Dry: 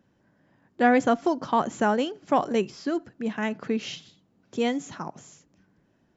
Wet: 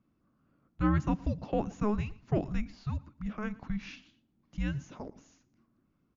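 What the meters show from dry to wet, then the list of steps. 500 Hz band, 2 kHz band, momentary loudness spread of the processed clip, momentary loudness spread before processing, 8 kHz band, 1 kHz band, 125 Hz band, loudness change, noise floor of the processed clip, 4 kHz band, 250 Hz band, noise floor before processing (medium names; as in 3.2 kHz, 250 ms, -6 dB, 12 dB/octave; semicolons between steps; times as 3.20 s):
-12.0 dB, -13.5 dB, 17 LU, 16 LU, no reading, -14.5 dB, +9.0 dB, -8.0 dB, -75 dBFS, -15.5 dB, -6.5 dB, -67 dBFS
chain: treble shelf 5 kHz -11.5 dB; frequency shift -420 Hz; on a send: feedback delay 115 ms, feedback 22%, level -21.5 dB; on the sum: trim -7 dB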